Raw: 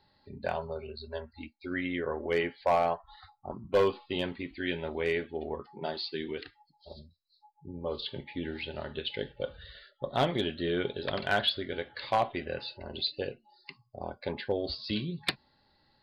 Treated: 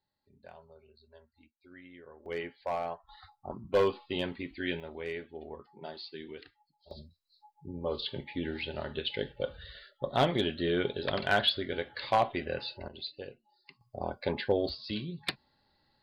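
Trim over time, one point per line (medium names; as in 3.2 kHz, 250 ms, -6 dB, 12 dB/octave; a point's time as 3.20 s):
-19 dB
from 2.26 s -8 dB
from 3.09 s -1 dB
from 4.80 s -8 dB
from 6.91 s +1 dB
from 12.88 s -8.5 dB
from 13.81 s +3 dB
from 14.69 s -3.5 dB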